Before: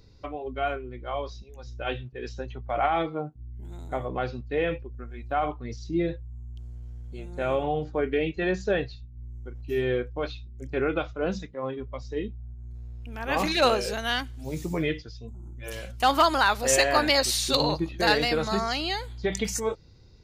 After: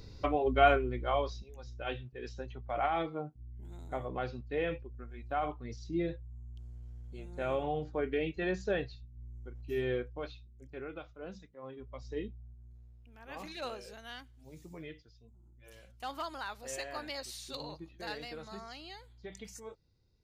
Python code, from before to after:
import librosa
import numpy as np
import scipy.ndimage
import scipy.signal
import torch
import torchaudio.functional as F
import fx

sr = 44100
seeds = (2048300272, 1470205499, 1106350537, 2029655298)

y = fx.gain(x, sr, db=fx.line((0.81, 5.0), (1.77, -7.0), (9.95, -7.0), (10.83, -17.0), (11.52, -17.0), (12.13, -6.5), (13.13, -19.0)))